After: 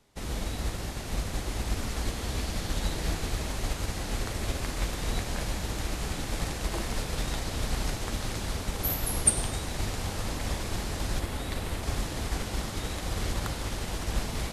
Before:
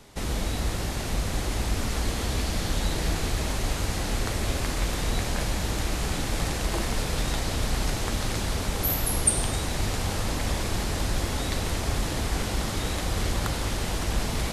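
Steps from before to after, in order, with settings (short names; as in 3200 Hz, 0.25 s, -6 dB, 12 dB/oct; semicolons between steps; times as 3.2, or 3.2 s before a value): 11.19–11.83 bell 5900 Hz -5.5 dB 0.82 oct; upward expander 1.5:1, over -46 dBFS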